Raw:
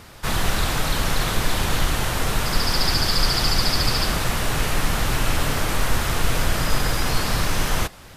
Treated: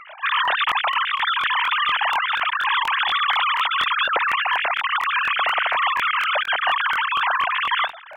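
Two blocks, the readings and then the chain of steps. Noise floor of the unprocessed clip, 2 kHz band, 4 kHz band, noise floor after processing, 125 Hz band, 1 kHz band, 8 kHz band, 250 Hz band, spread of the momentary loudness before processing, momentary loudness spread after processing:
-43 dBFS, +7.5 dB, +1.0 dB, -39 dBFS, under -30 dB, +8.0 dB, under -20 dB, under -20 dB, 4 LU, 2 LU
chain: formants replaced by sine waves; crackling interface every 0.24 s, samples 1024, repeat, from 0.43 s; trim -2 dB

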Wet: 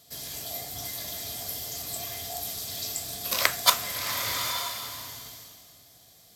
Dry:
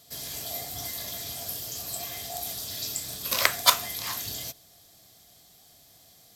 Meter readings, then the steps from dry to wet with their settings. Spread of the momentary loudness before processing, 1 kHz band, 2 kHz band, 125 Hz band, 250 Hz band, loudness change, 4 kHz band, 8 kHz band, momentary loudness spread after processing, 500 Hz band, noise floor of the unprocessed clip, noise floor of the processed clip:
12 LU, +0.5 dB, 0.0 dB, +0.5 dB, 0.0 dB, -0.5 dB, +0.5 dB, 0.0 dB, 14 LU, 0.0 dB, -57 dBFS, -56 dBFS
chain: swelling reverb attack 900 ms, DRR 5 dB; trim -1 dB

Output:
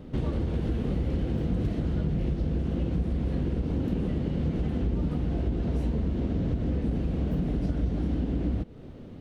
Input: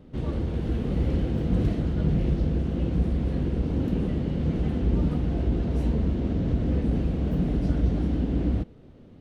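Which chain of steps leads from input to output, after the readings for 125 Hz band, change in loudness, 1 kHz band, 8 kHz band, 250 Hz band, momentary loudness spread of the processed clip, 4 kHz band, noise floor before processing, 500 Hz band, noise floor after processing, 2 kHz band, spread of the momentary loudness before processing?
-3.0 dB, -3.0 dB, -2.5 dB, no reading, -2.5 dB, 1 LU, -2.5 dB, -49 dBFS, -2.5 dB, -43 dBFS, -2.5 dB, 3 LU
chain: compression 5:1, threshold -31 dBFS, peak gain reduction 12 dB; trim +6 dB

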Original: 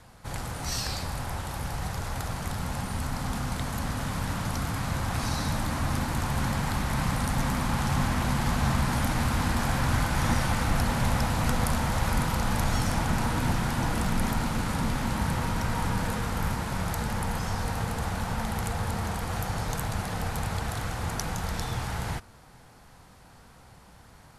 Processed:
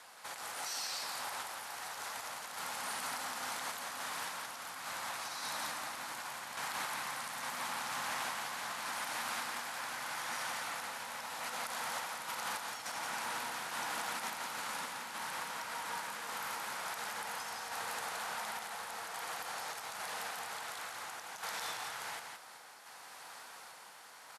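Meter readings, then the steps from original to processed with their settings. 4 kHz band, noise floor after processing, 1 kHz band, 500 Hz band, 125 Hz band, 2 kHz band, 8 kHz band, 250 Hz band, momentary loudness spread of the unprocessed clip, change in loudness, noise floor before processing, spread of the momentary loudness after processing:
-5.0 dB, -53 dBFS, -8.0 dB, -12.5 dB, -36.0 dB, -5.5 dB, -5.0 dB, -26.0 dB, 6 LU, -10.5 dB, -53 dBFS, 6 LU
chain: Bessel high-pass 970 Hz, order 2; compression 3:1, threshold -47 dBFS, peak gain reduction 14 dB; peak limiter -36 dBFS, peak gain reduction 10.5 dB; random-step tremolo; on a send: delay 172 ms -4.5 dB; on the sum: trim +7.5 dB

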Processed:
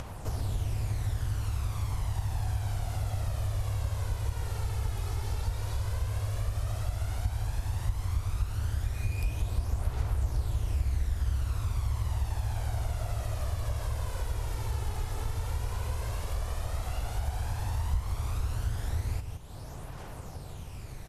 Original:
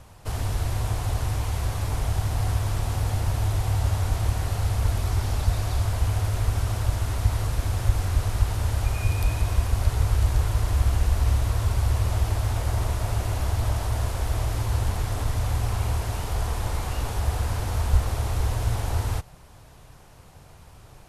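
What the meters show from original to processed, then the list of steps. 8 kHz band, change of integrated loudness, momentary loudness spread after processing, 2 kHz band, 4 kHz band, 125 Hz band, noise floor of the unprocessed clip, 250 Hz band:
-8.5 dB, -7.5 dB, 4 LU, -8.5 dB, -8.5 dB, -7.0 dB, -49 dBFS, -9.0 dB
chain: delay 166 ms -10.5 dB; upward compressor, threshold -34 dBFS; phaser 0.1 Hz, delay 2.4 ms, feedback 43%; compression 2:1, threshold -30 dBFS, peak gain reduction 12 dB; trim -3 dB

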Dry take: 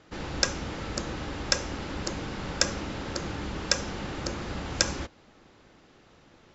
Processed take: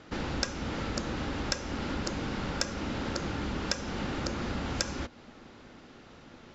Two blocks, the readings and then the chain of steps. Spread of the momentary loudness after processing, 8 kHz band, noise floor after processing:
19 LU, no reading, -53 dBFS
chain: low-pass 7.1 kHz; compression 2.5:1, threshold -37 dBFS, peak gain reduction 12.5 dB; small resonant body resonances 240/1400 Hz, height 7 dB, ringing for 85 ms; trim +4.5 dB

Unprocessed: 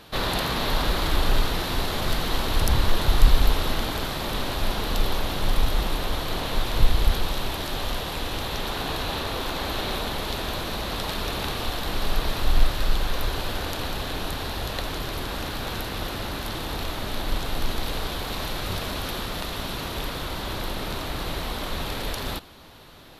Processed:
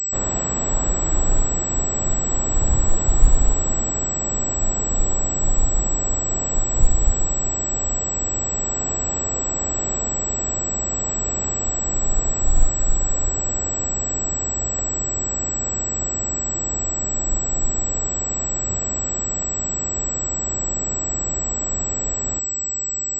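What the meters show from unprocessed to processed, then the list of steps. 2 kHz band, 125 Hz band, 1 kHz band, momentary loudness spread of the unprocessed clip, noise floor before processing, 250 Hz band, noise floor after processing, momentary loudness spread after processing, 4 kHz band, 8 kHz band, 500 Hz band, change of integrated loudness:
-9.0 dB, +2.0 dB, -3.5 dB, 6 LU, -32 dBFS, +1.5 dB, -25 dBFS, 2 LU, -17.0 dB, +21.5 dB, 0.0 dB, +6.0 dB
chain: tilt shelf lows +8.5 dB, about 1.4 kHz; reverse; upward compressor, threshold -28 dBFS; reverse; class-D stage that switches slowly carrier 7.8 kHz; trim -6.5 dB

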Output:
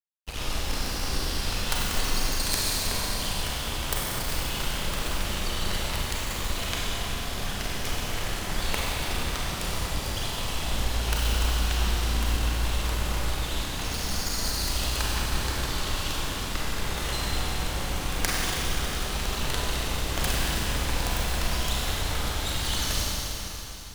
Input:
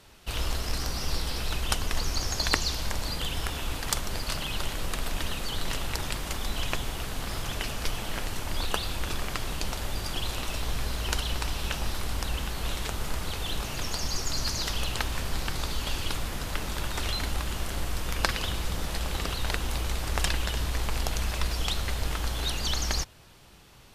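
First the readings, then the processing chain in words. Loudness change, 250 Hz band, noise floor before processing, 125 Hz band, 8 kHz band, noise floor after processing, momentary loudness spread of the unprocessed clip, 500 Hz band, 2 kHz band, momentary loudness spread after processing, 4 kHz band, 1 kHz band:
+2.5 dB, +3.0 dB, -37 dBFS, +2.5 dB, +3.5 dB, -33 dBFS, 5 LU, +2.5 dB, +2.5 dB, 4 LU, +2.5 dB, +2.5 dB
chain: self-modulated delay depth 0.45 ms; crossover distortion -36 dBFS; Schroeder reverb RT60 3.6 s, combs from 31 ms, DRR -5 dB

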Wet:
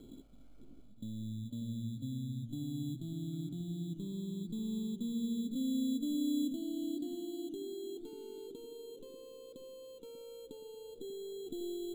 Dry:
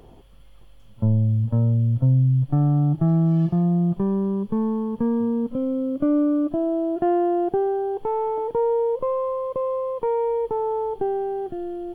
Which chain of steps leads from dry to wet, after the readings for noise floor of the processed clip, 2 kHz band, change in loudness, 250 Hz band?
-54 dBFS, no reading, -17.5 dB, -14.0 dB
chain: peaking EQ 70 Hz -9 dB 2 oct; band-stop 790 Hz, Q 13; reverse; compression 6:1, threshold -32 dBFS, peak gain reduction 13.5 dB; reverse; peak limiter -33.5 dBFS, peak gain reduction 8.5 dB; cascade formant filter i; sample-and-hold 12×; bucket-brigade echo 591 ms, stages 2048, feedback 35%, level -7 dB; modulated delay 395 ms, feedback 73%, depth 109 cents, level -24 dB; trim +7.5 dB

